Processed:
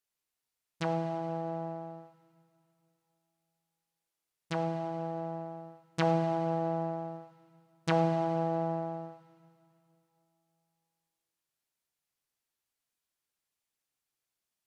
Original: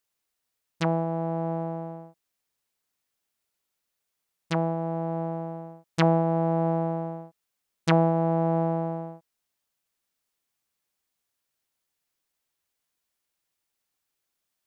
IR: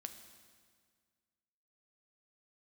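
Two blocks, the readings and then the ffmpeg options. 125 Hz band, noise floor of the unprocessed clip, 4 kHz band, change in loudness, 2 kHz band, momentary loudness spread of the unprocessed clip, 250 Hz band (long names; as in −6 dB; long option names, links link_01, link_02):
−8.5 dB, −82 dBFS, −5.5 dB, −6.5 dB, −5.0 dB, 14 LU, −7.5 dB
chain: -filter_complex "[1:a]atrim=start_sample=2205,asetrate=27342,aresample=44100[link_01];[0:a][link_01]afir=irnorm=-1:irlink=0,volume=-4dB"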